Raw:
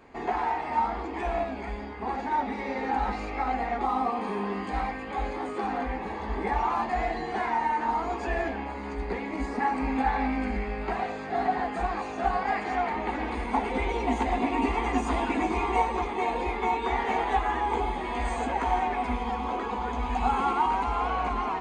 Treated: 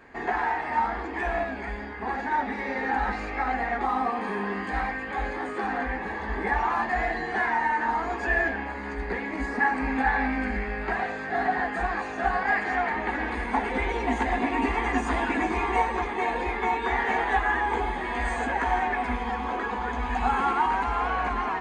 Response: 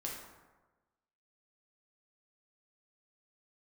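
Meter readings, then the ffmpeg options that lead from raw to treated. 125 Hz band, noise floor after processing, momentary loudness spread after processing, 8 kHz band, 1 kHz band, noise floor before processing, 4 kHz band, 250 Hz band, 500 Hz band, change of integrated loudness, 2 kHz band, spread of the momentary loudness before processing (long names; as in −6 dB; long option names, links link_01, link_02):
0.0 dB, −34 dBFS, 6 LU, can't be measured, +0.5 dB, −36 dBFS, +0.5 dB, 0.0 dB, 0.0 dB, +2.0 dB, +8.0 dB, 6 LU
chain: -af "equalizer=frequency=1700:width_type=o:width=0.4:gain=12"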